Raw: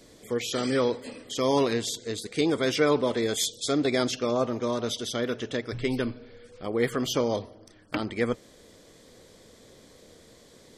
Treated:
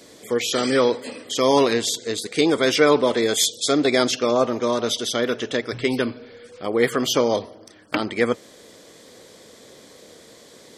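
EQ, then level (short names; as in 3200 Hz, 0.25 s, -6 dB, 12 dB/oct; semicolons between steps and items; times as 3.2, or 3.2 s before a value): HPF 270 Hz 6 dB/oct; +8.0 dB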